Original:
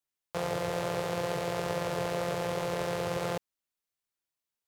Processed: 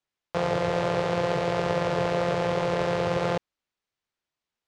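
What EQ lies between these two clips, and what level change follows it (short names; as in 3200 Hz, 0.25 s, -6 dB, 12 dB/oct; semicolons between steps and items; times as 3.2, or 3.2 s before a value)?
air absorption 110 m; +7.0 dB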